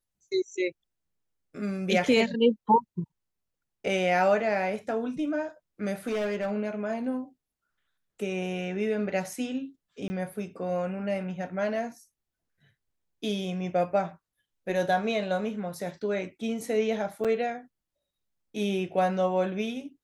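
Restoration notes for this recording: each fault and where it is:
0:06.07–0:06.52: clipping −25.5 dBFS
0:10.08–0:10.10: drop-out 20 ms
0:17.24–0:17.25: drop-out 6.8 ms

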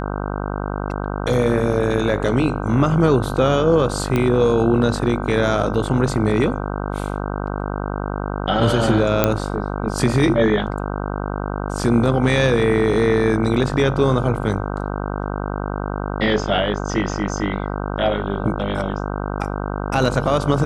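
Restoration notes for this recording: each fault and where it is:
mains buzz 50 Hz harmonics 31 −25 dBFS
0:04.16: click −8 dBFS
0:09.24: click −1 dBFS

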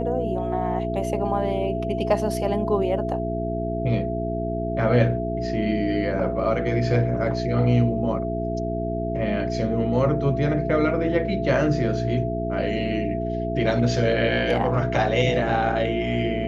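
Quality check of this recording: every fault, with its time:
mains hum 60 Hz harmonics 7 −28 dBFS
whistle 670 Hz −28 dBFS

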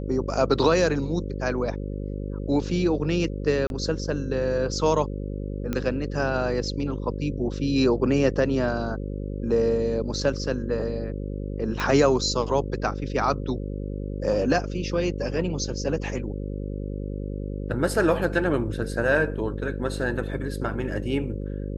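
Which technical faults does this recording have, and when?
mains buzz 50 Hz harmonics 11 −31 dBFS
0:03.67–0:03.70: drop-out 31 ms
0:05.73: click −14 dBFS
0:11.80: click −14 dBFS

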